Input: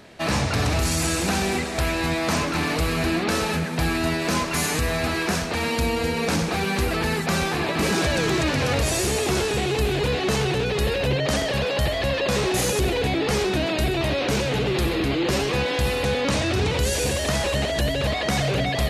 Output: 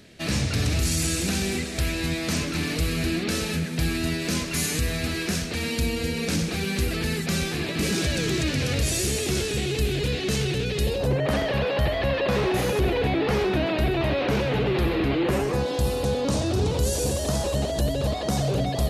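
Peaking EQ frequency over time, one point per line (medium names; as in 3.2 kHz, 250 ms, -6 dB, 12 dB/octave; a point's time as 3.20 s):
peaking EQ -14 dB 1.5 oct
10.78 s 920 Hz
11.37 s 7.7 kHz
15.17 s 7.7 kHz
15.69 s 2.1 kHz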